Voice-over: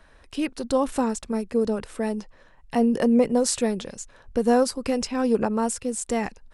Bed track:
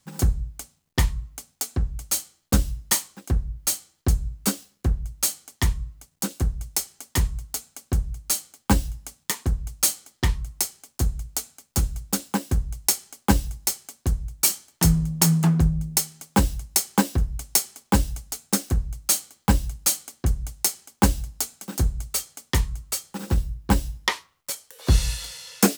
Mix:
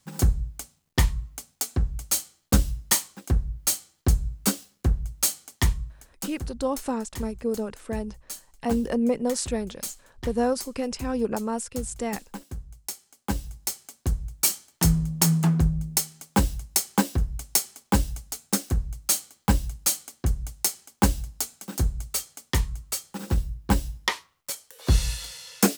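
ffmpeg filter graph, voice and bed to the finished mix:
-filter_complex "[0:a]adelay=5900,volume=-4.5dB[a];[1:a]volume=11.5dB,afade=t=out:st=5.64:d=0.9:silence=0.211349,afade=t=in:st=13.05:d=1.06:silence=0.266073[b];[a][b]amix=inputs=2:normalize=0"

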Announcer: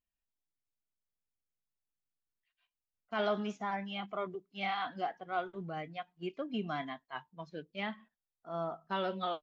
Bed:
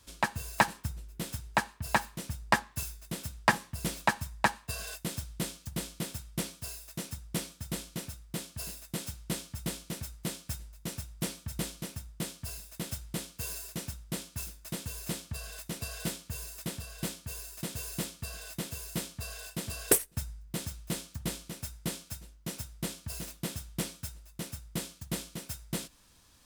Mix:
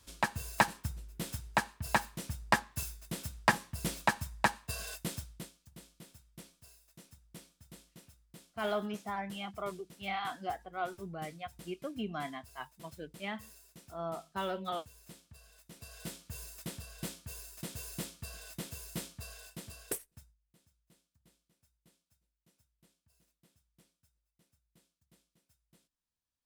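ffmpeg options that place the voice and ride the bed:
-filter_complex "[0:a]adelay=5450,volume=-1.5dB[a];[1:a]volume=10.5dB,afade=t=out:st=5.07:d=0.43:silence=0.16788,afade=t=in:st=15.65:d=0.75:silence=0.237137,afade=t=out:st=19.03:d=1.35:silence=0.0398107[b];[a][b]amix=inputs=2:normalize=0"

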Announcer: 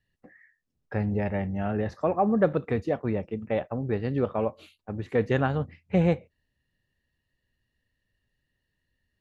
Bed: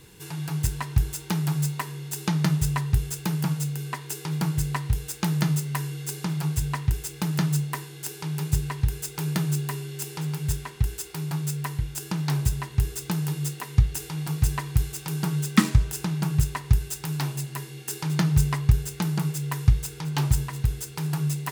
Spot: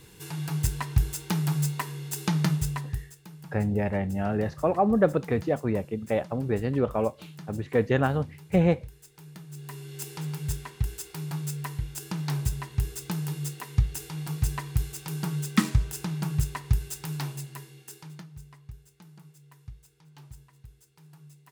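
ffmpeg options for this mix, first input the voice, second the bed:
-filter_complex "[0:a]adelay=2600,volume=1dB[a];[1:a]volume=14.5dB,afade=t=out:st=2.38:d=0.77:silence=0.11885,afade=t=in:st=9.5:d=0.51:silence=0.16788,afade=t=out:st=17.12:d=1.15:silence=0.0841395[b];[a][b]amix=inputs=2:normalize=0"

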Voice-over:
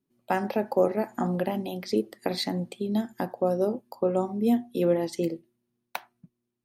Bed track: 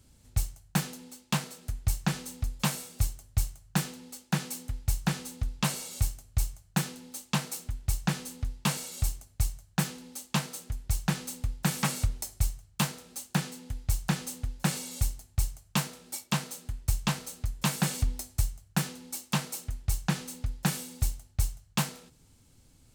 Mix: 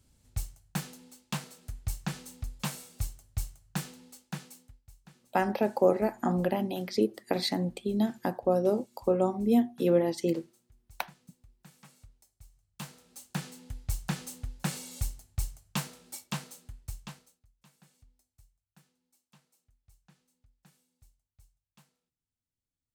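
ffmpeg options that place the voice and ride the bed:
-filter_complex "[0:a]adelay=5050,volume=-0.5dB[a];[1:a]volume=17dB,afade=t=out:st=4.02:d=0.79:silence=0.0841395,afade=t=in:st=12.49:d=1.14:silence=0.0707946,afade=t=out:st=16.06:d=1.34:silence=0.0334965[b];[a][b]amix=inputs=2:normalize=0"

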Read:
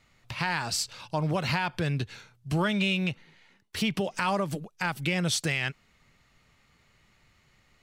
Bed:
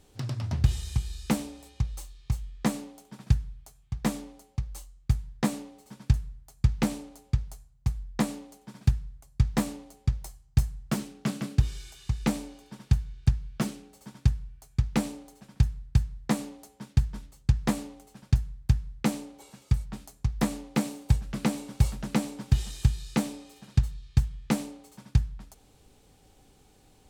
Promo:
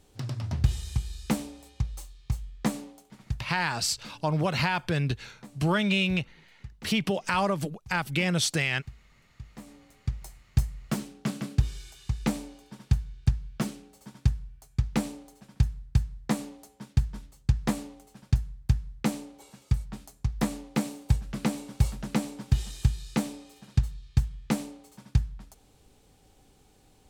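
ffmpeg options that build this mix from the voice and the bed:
-filter_complex "[0:a]adelay=3100,volume=1.5dB[a];[1:a]volume=19dB,afade=t=out:st=2.89:d=0.62:silence=0.1,afade=t=in:st=9.57:d=0.84:silence=0.1[b];[a][b]amix=inputs=2:normalize=0"

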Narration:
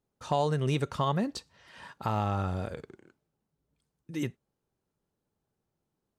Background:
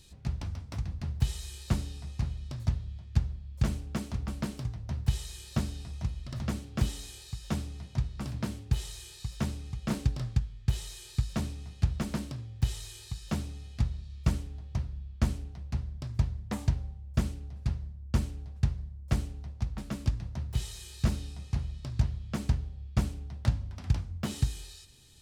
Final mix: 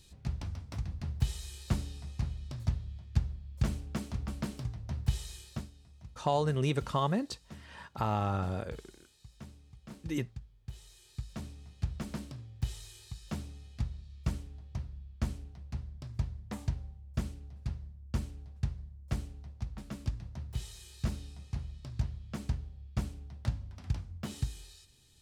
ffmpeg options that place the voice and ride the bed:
-filter_complex "[0:a]adelay=5950,volume=-1.5dB[a];[1:a]volume=8.5dB,afade=t=out:st=5.33:d=0.37:silence=0.188365,afade=t=in:st=10.64:d=1.46:silence=0.281838[b];[a][b]amix=inputs=2:normalize=0"

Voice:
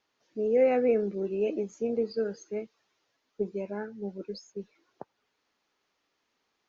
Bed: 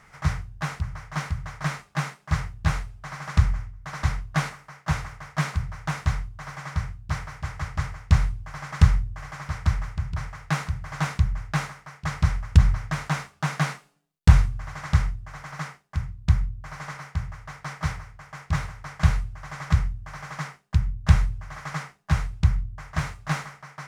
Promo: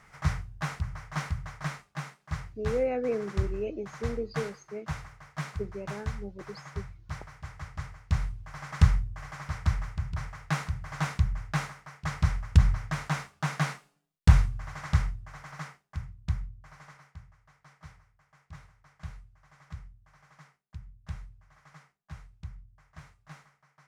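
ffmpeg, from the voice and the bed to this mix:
-filter_complex "[0:a]adelay=2200,volume=-5dB[a];[1:a]volume=2.5dB,afade=t=out:st=1.32:d=0.62:silence=0.473151,afade=t=in:st=8.05:d=0.73:silence=0.501187,afade=t=out:st=14.81:d=2.51:silence=0.125893[b];[a][b]amix=inputs=2:normalize=0"

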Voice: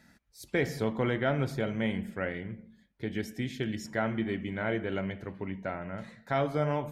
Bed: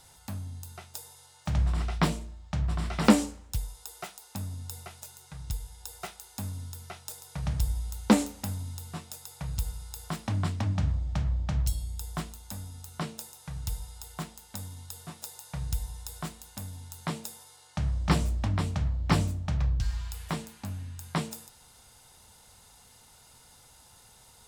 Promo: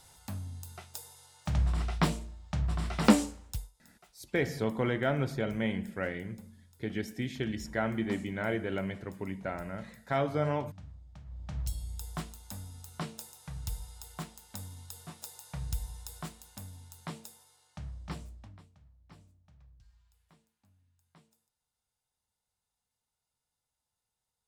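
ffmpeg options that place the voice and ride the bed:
-filter_complex "[0:a]adelay=3800,volume=-1dB[a];[1:a]volume=15.5dB,afade=t=out:st=3.47:d=0.24:silence=0.112202,afade=t=in:st=11.25:d=0.66:silence=0.133352,afade=t=out:st=15.95:d=2.74:silence=0.0375837[b];[a][b]amix=inputs=2:normalize=0"

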